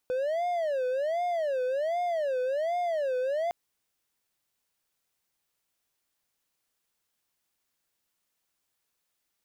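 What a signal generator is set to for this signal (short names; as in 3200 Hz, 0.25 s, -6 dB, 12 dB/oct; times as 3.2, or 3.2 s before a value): siren wail 503–711 Hz 1.3/s triangle -24 dBFS 3.41 s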